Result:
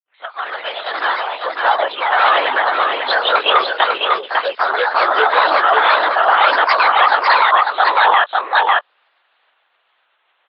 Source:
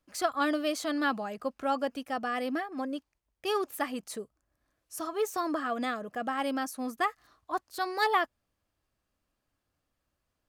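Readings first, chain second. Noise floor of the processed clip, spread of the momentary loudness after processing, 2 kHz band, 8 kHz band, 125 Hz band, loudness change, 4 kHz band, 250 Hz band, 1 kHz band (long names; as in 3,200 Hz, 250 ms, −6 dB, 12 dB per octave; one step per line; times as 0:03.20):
−64 dBFS, 9 LU, +21.0 dB, below −20 dB, can't be measured, +18.0 dB, +21.0 dB, −4.5 dB, +20.0 dB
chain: fade in at the beginning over 2.98 s
linear-prediction vocoder at 8 kHz whisper
delay with pitch and tempo change per echo 169 ms, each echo +2 semitones, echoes 2
on a send: single-tap delay 549 ms −4.5 dB
on the sum: dynamic equaliser 2,100 Hz, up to −6 dB, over −49 dBFS, Q 2.4
Bessel high-pass filter 960 Hz, order 4
boost into a limiter +25.5 dB
level −1 dB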